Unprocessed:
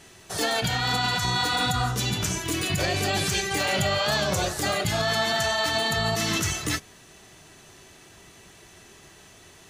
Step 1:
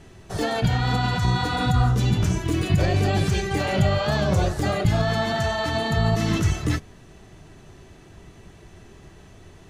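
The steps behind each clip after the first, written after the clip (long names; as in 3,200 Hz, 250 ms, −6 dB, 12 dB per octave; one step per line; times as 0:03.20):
spectral tilt −3 dB per octave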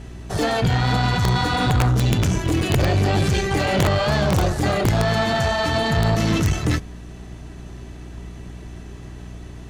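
wrap-around overflow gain 10.5 dB
mains hum 60 Hz, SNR 19 dB
tube saturation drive 20 dB, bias 0.4
level +6.5 dB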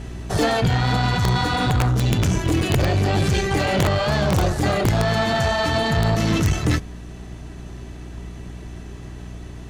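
speech leveller within 4 dB 0.5 s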